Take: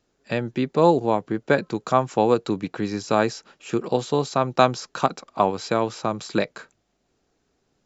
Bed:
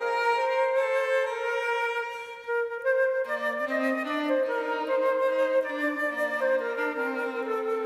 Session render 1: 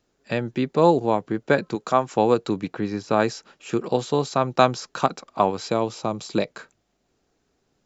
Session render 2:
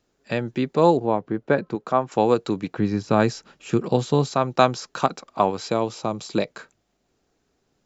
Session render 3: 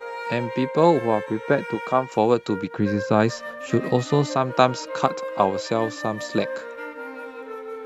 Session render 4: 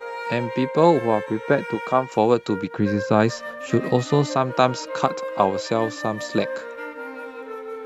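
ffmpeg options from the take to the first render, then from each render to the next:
-filter_complex "[0:a]asettb=1/sr,asplit=3[a][b][c];[a]atrim=end=1.754[d];[b]atrim=start=1.75:end=2.16,asetpts=PTS-STARTPTS,afade=t=in:d=0.004:c=qsin,afade=t=out:st=0.406:d=0.004:c=qsin,equalizer=f=75:t=o:w=1.3:g=-14.5[e];[c]atrim=start=2.156[f];[d][e]acrossfade=d=0.004:c1=hsin:c2=qsin[g];[g][f]acrossfade=d=0.004:c1=qsin:c2=hsin,asettb=1/sr,asplit=3[h][i][j];[h]atrim=end=2.744[k];[i]atrim=start=2.74:end=3.2,asetpts=PTS-STARTPTS,afade=t=in:d=0.004:c=qsin,afade=t=out:st=0.456:d=0.004:c=qsin,lowpass=f=2.7k:p=1[l];[j]atrim=start=3.196[m];[k][l]acrossfade=d=0.004:c1=hsin:c2=qsin[n];[n][m]acrossfade=d=0.004:c1=qsin:c2=hsin,asettb=1/sr,asplit=3[o][p][q];[o]atrim=end=5.704[r];[p]atrim=start=5.7:end=6.48,asetpts=PTS-STARTPTS,afade=t=in:d=0.004:c=qsin,afade=t=out:st=0.776:d=0.004:c=qsin,equalizer=f=1.6k:t=o:w=0.78:g=-8[s];[q]atrim=start=6.476[t];[r][s]acrossfade=d=0.004:c1=hsin:c2=qsin[u];[u][t]acrossfade=d=0.004:c1=qsin:c2=hsin"
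-filter_complex "[0:a]asettb=1/sr,asplit=3[a][b][c];[a]atrim=end=0.974[d];[b]atrim=start=0.97:end=2.12,asetpts=PTS-STARTPTS,afade=t=in:d=0.004:c=qsin,afade=t=out:st=1.146:d=0.004:c=qsin,lowpass=f=1.6k:p=1[e];[c]atrim=start=2.116[f];[d][e]acrossfade=d=0.004:c1=hsin:c2=qsin[g];[g][f]acrossfade=d=0.004:c1=qsin:c2=hsin,asettb=1/sr,asplit=3[h][i][j];[h]atrim=end=2.784[k];[i]atrim=start=2.78:end=4.34,asetpts=PTS-STARTPTS,afade=t=in:d=0.004:c=qsin,afade=t=out:st=1.556:d=0.004:c=qsin,bass=f=250:g=8,treble=f=4k:g=0[l];[j]atrim=start=4.336[m];[k][l]acrossfade=d=0.004:c1=hsin:c2=qsin[n];[n][m]acrossfade=d=0.004:c1=qsin:c2=hsin"
-filter_complex "[1:a]volume=-6dB[a];[0:a][a]amix=inputs=2:normalize=0"
-af "volume=1dB,alimiter=limit=-3dB:level=0:latency=1"

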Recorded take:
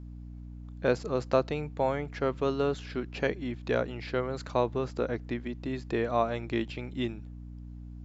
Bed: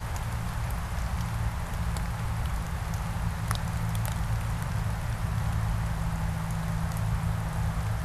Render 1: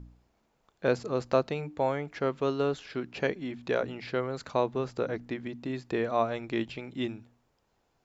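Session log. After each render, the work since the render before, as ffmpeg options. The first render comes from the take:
-af "bandreject=f=60:t=h:w=4,bandreject=f=120:t=h:w=4,bandreject=f=180:t=h:w=4,bandreject=f=240:t=h:w=4,bandreject=f=300:t=h:w=4"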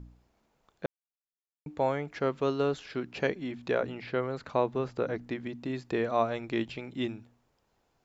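-filter_complex "[0:a]asettb=1/sr,asplit=3[a][b][c];[a]atrim=end=3.724[d];[b]atrim=start=3.72:end=5.2,asetpts=PTS-STARTPTS,afade=t=in:d=0.004:c=qsin,afade=t=out:st=1.476:d=0.004:c=qsin,acrossover=split=3600[e][f];[f]acompressor=threshold=-60dB:ratio=4:attack=1:release=60[g];[e][g]amix=inputs=2:normalize=0[h];[c]atrim=start=5.196[i];[d][h]acrossfade=d=0.004:c1=hsin:c2=qsin[j];[j][i]acrossfade=d=0.004:c1=qsin:c2=hsin,asplit=3[k][l][m];[k]atrim=end=0.86,asetpts=PTS-STARTPTS,afade=t=out:st=0.856:d=0.004:c=hsin[n];[l]atrim=start=0.86:end=1.66,asetpts=PTS-STARTPTS,volume=0[o];[m]atrim=start=1.66,asetpts=PTS-STARTPTS,afade=t=in:d=0.004:c=hsin[p];[n][o][p]concat=n=3:v=0:a=1"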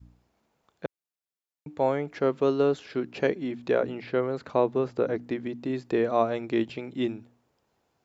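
-af "adynamicequalizer=threshold=0.00891:dfrequency=370:dqfactor=0.73:tfrequency=370:tqfactor=0.73:attack=5:release=100:ratio=0.375:range=3:mode=boostabove:tftype=bell,highpass=66"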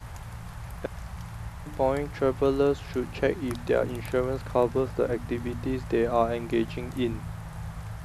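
-filter_complex "[1:a]volume=-8dB[a];[0:a][a]amix=inputs=2:normalize=0"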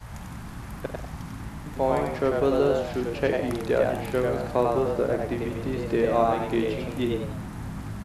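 -filter_complex "[0:a]asplit=2[a][b];[b]adelay=48,volume=-11.5dB[c];[a][c]amix=inputs=2:normalize=0,asplit=5[d][e][f][g][h];[e]adelay=96,afreqshift=97,volume=-3.5dB[i];[f]adelay=192,afreqshift=194,volume=-12.9dB[j];[g]adelay=288,afreqshift=291,volume=-22.2dB[k];[h]adelay=384,afreqshift=388,volume=-31.6dB[l];[d][i][j][k][l]amix=inputs=5:normalize=0"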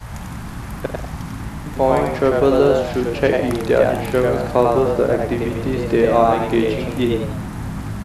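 -af "volume=8dB,alimiter=limit=-2dB:level=0:latency=1"

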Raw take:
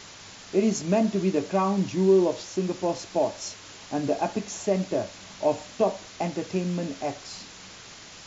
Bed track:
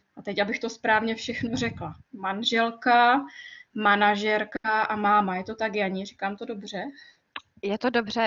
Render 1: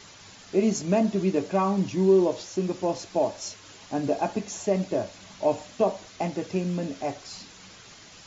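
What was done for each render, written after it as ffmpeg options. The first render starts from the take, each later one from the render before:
-af "afftdn=nr=6:nf=-46"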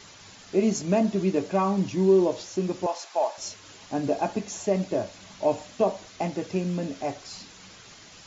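-filter_complex "[0:a]asettb=1/sr,asplit=3[a][b][c];[a]atrim=end=2.864[d];[b]atrim=start=2.86:end=3.38,asetpts=PTS-STARTPTS,afade=t=in:d=0.004:c=qsin,afade=t=out:st=0.516:d=0.004:c=qsin,highpass=f=830:t=q:w=1.6[e];[c]atrim=start=3.376[f];[d][e]acrossfade=d=0.004:c1=hsin:c2=qsin[g];[g][f]acrossfade=d=0.004:c1=qsin:c2=hsin"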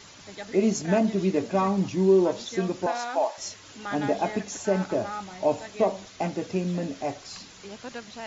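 -filter_complex "[1:a]volume=-14.5dB[a];[0:a][a]amix=inputs=2:normalize=0"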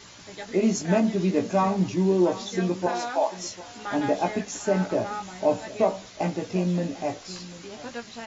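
-filter_complex "[0:a]asplit=2[a][b];[b]adelay=17,volume=-5.5dB[c];[a][c]amix=inputs=2:normalize=0,aecho=1:1:745:0.141"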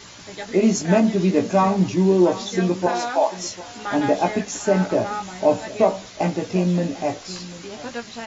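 -af "volume=5dB"

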